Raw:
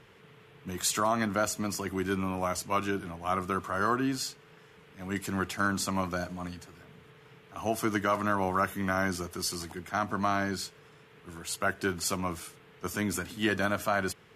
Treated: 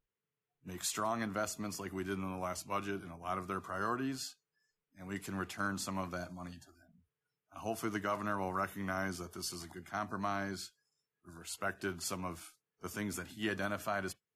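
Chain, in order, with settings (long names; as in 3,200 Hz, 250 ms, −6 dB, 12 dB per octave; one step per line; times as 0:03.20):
noise reduction from a noise print of the clip's start 30 dB
level −8 dB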